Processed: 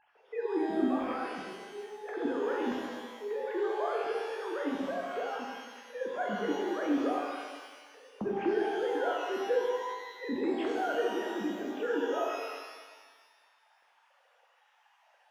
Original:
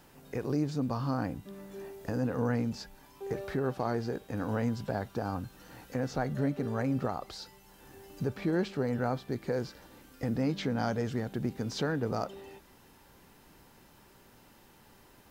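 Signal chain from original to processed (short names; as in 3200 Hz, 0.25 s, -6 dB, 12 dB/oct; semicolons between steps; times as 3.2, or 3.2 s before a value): sine-wave speech; shimmer reverb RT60 1.4 s, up +12 st, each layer -8 dB, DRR -2 dB; gain -4 dB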